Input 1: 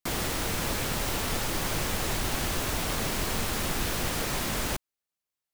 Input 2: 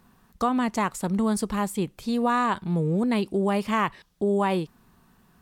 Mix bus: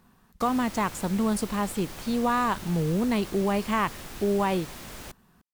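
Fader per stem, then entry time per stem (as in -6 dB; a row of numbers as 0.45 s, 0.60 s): -11.5 dB, -1.5 dB; 0.35 s, 0.00 s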